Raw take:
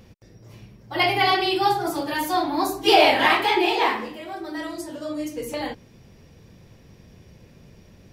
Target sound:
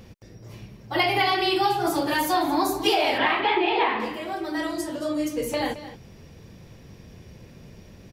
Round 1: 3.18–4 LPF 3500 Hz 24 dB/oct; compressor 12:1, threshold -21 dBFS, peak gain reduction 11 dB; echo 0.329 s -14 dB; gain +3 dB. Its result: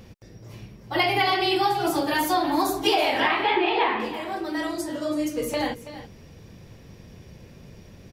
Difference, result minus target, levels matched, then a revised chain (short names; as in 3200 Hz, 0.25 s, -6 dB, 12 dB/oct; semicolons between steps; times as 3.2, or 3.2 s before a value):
echo 0.109 s late
3.18–4 LPF 3500 Hz 24 dB/oct; compressor 12:1, threshold -21 dBFS, peak gain reduction 11 dB; echo 0.22 s -14 dB; gain +3 dB